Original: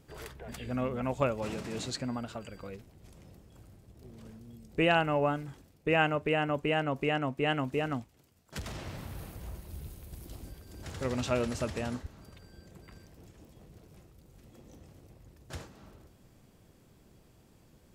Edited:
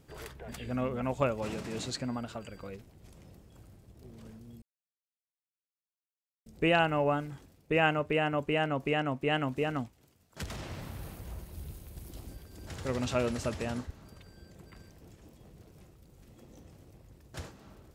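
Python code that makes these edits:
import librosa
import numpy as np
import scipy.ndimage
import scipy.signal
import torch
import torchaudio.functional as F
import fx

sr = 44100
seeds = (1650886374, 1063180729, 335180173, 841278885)

y = fx.edit(x, sr, fx.insert_silence(at_s=4.62, length_s=1.84), tone=tone)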